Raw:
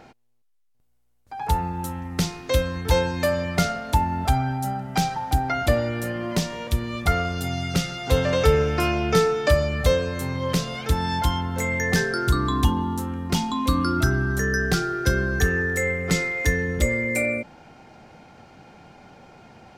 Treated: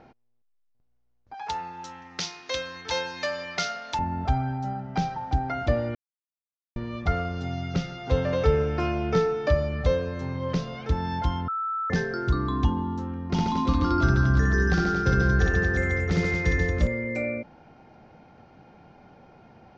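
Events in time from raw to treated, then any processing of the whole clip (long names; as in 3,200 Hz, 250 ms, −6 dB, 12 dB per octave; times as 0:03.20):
0:01.34–0:03.99: meter weighting curve ITU-R 468
0:05.95–0:06.76: silence
0:11.48–0:11.90: beep over 1,320 Hz −20 dBFS
0:13.30–0:16.87: reverse bouncing-ball delay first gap 60 ms, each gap 1.25×, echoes 7, each echo −2 dB
whole clip: Butterworth low-pass 6,300 Hz 48 dB per octave; high-shelf EQ 2,100 Hz −10 dB; level −3 dB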